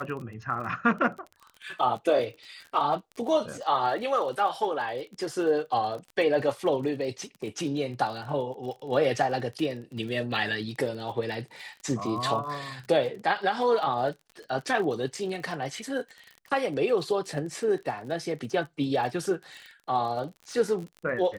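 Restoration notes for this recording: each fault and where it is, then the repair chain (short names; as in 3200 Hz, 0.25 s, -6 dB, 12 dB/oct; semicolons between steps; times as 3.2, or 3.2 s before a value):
crackle 36/s -36 dBFS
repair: de-click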